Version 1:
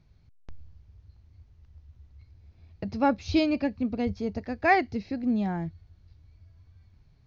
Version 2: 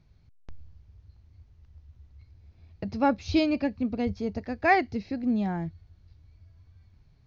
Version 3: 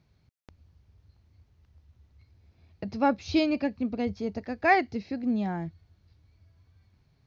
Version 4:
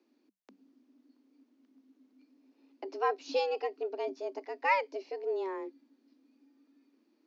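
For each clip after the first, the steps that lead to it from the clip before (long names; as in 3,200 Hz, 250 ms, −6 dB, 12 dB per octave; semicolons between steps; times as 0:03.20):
no processing that can be heard
high-pass filter 140 Hz 6 dB per octave
frequency shifter +190 Hz; level −6 dB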